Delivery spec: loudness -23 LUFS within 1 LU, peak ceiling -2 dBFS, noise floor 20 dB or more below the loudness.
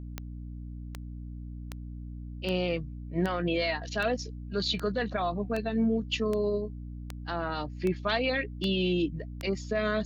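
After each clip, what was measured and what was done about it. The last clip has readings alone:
clicks found 13; hum 60 Hz; highest harmonic 300 Hz; hum level -37 dBFS; loudness -30.5 LUFS; peak level -13.0 dBFS; loudness target -23.0 LUFS
-> de-click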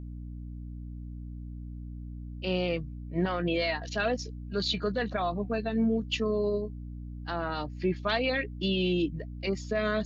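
clicks found 0; hum 60 Hz; highest harmonic 300 Hz; hum level -37 dBFS
-> hum notches 60/120/180/240/300 Hz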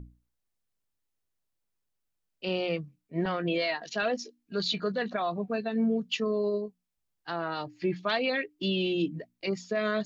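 hum not found; loudness -31.0 LUFS; peak level -15.5 dBFS; loudness target -23.0 LUFS
-> trim +8 dB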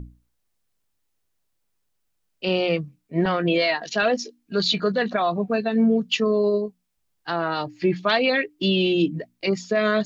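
loudness -23.0 LUFS; peak level -7.5 dBFS; noise floor -73 dBFS

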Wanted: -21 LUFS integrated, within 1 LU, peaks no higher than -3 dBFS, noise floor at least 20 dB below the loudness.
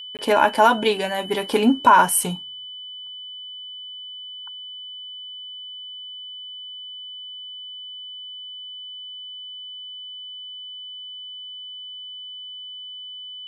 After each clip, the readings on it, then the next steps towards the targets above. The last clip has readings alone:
dropouts 1; longest dropout 18 ms; steady tone 3 kHz; tone level -34 dBFS; loudness -25.5 LUFS; peak level -3.0 dBFS; loudness target -21.0 LUFS
-> interpolate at 0.17 s, 18 ms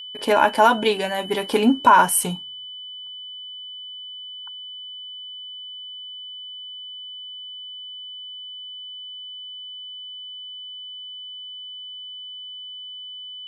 dropouts 0; steady tone 3 kHz; tone level -34 dBFS
-> band-stop 3 kHz, Q 30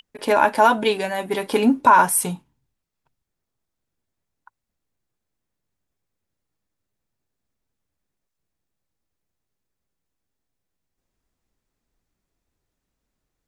steady tone not found; loudness -18.5 LUFS; peak level -3.0 dBFS; loudness target -21.0 LUFS
-> trim -2.5 dB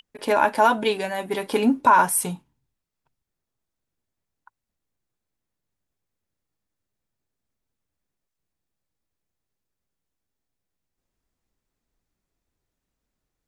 loudness -21.0 LUFS; peak level -5.5 dBFS; noise floor -84 dBFS

